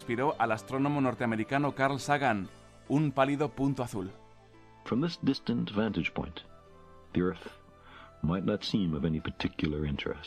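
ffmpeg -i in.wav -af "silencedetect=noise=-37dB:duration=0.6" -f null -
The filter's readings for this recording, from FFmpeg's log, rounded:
silence_start: 4.08
silence_end: 4.86 | silence_duration: 0.78
silence_start: 6.40
silence_end: 7.15 | silence_duration: 0.75
silence_start: 7.48
silence_end: 8.23 | silence_duration: 0.76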